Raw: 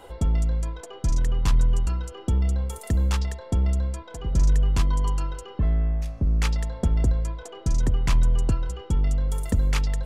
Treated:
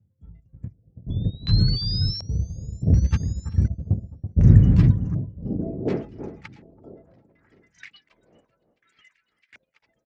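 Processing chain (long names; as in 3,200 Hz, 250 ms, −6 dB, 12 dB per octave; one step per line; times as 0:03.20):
spectral dynamics exaggerated over time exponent 2
wind on the microphone 140 Hz −32 dBFS
delay with pitch and tempo change per echo 200 ms, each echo −3 semitones, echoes 3, each echo −6 dB
noise gate −22 dBFS, range −38 dB
high-pass filter sweep 100 Hz → 2,200 Hz, 0:04.73–0:07.36
on a send: single-tap delay 382 ms −22.5 dB
on the sum: sound drawn into the spectrogram rise, 0:01.10–0:02.83, 3,400–7,300 Hz −28 dBFS
in parallel at 0 dB: output level in coarse steps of 16 dB
on the sum: drawn EQ curve 190 Hz 0 dB, 1,000 Hz −16 dB, 3,100 Hz −8 dB, 5,000 Hz +2 dB
delay that swaps between a low-pass and a high-pass 331 ms, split 1,500 Hz, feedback 51%, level −10 dB
auto-filter low-pass square 0.68 Hz 610–2,000 Hz
level +7 dB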